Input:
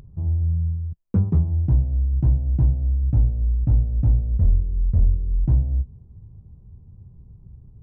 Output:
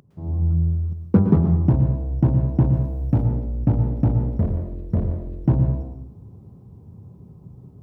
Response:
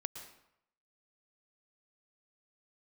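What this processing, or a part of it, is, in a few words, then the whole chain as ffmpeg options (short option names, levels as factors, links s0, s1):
far laptop microphone: -filter_complex "[1:a]atrim=start_sample=2205[s0];[0:a][s0]afir=irnorm=-1:irlink=0,highpass=200,dynaudnorm=f=170:g=3:m=5.31,asettb=1/sr,asplit=3[s1][s2][s3];[s1]atrim=end=2.734[s4];[s2]atrim=start=2.73:end=3.25,asetpts=PTS-STARTPTS,afade=t=in:d=0.004:c=qsin,afade=t=out:st=0.516:d=0.004:c=qsin,aemphasis=mode=production:type=cd[s5];[s3]atrim=start=3.246[s6];[s4][s5]acrossfade=d=0.004:c1=hsin:c2=qsin[s7];[s7][s6]acrossfade=d=0.004:c1=qsin:c2=hsin"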